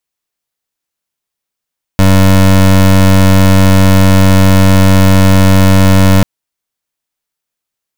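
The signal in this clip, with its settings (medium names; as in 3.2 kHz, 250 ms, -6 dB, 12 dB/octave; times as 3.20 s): pulse 95.4 Hz, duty 24% -5 dBFS 4.24 s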